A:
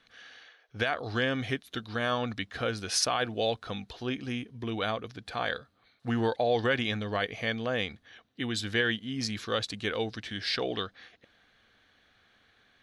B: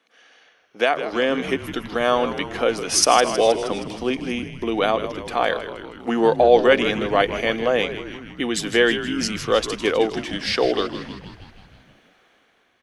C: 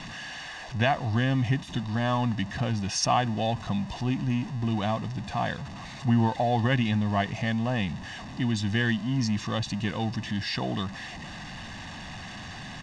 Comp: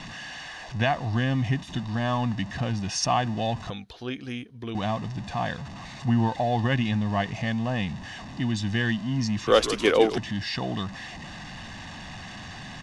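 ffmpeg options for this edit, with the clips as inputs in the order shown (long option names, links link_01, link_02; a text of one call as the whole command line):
ffmpeg -i take0.wav -i take1.wav -i take2.wav -filter_complex "[2:a]asplit=3[link_01][link_02][link_03];[link_01]atrim=end=3.702[link_04];[0:a]atrim=start=3.698:end=4.752[link_05];[link_02]atrim=start=4.748:end=9.472[link_06];[1:a]atrim=start=9.468:end=10.182[link_07];[link_03]atrim=start=10.178[link_08];[link_04][link_05]acrossfade=duration=0.004:curve1=hsin:curve2=hsin[link_09];[link_09][link_06]acrossfade=duration=0.004:curve1=hsin:curve2=hsin[link_10];[link_10][link_07]acrossfade=duration=0.004:curve1=hsin:curve2=hsin[link_11];[link_11][link_08]acrossfade=duration=0.004:curve1=hsin:curve2=hsin" out.wav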